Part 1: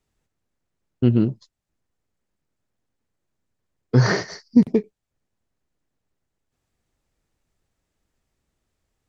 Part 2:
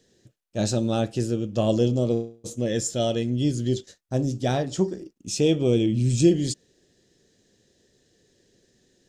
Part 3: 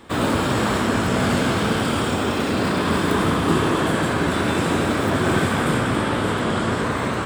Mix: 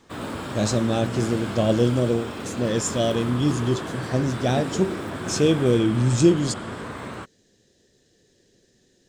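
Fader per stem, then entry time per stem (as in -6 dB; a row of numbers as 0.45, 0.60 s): -17.5, +1.5, -11.5 dB; 0.00, 0.00, 0.00 s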